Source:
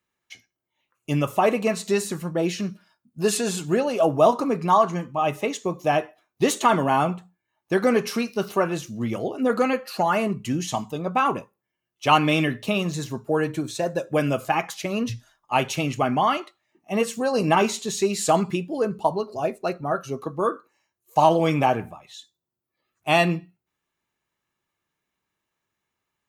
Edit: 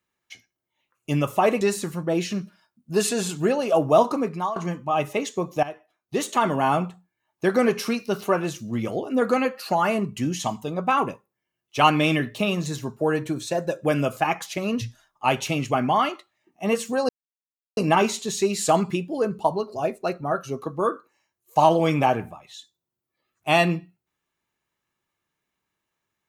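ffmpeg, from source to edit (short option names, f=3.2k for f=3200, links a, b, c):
-filter_complex "[0:a]asplit=5[a][b][c][d][e];[a]atrim=end=1.612[f];[b]atrim=start=1.888:end=4.84,asetpts=PTS-STARTPTS,afade=t=out:st=2.552:d=0.4:silence=0.149624[g];[c]atrim=start=4.84:end=5.91,asetpts=PTS-STARTPTS,afade=t=in:d=0.004:c=hsin:silence=0.149624,afade=t=out:st=1.066:d=0.004:c=hsin:silence=0.177828[h];[d]atrim=start=5.91:end=17.37,asetpts=PTS-STARTPTS,afade=t=in:d=1.15:silence=0.177828,afade=t=out:st=11.456:d=0.004:c=hsin,apad=pad_dur=0.68[i];[e]atrim=start=17.37,asetpts=PTS-STARTPTS,afade=t=in:d=0.004:c=hsin[j];[g][h][i][j]concat=n=4:v=0:a=1[k];[f][k]acrossfade=d=0.004:c1=hsin:c2=hsin"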